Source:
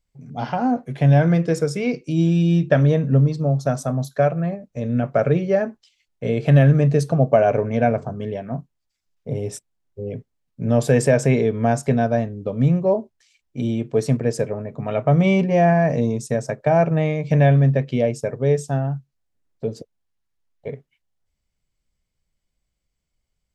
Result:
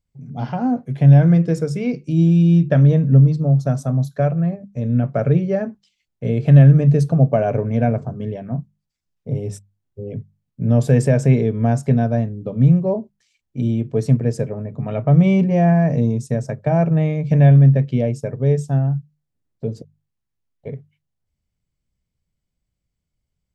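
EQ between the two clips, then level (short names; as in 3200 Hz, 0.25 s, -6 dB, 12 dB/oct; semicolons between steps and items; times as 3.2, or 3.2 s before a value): bell 120 Hz +11 dB 2.6 oct; notches 50/100/150/200 Hz; -5.0 dB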